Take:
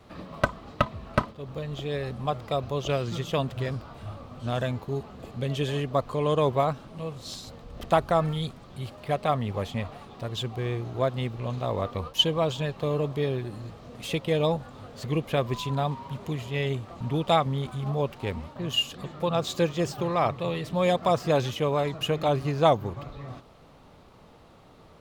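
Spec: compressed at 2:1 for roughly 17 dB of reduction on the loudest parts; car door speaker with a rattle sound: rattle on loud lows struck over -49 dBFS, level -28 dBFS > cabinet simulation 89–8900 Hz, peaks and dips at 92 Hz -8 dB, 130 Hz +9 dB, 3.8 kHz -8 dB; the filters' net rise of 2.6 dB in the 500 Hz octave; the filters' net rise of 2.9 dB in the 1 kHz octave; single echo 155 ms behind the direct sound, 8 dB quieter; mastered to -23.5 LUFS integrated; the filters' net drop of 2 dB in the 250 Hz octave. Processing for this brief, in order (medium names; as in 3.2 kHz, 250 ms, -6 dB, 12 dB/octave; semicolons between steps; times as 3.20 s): peaking EQ 250 Hz -8.5 dB; peaking EQ 500 Hz +4 dB; peaking EQ 1 kHz +3 dB; compression 2:1, threshold -46 dBFS; delay 155 ms -8 dB; rattle on loud lows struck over -49 dBFS, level -28 dBFS; cabinet simulation 89–8900 Hz, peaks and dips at 92 Hz -8 dB, 130 Hz +9 dB, 3.8 kHz -8 dB; trim +13.5 dB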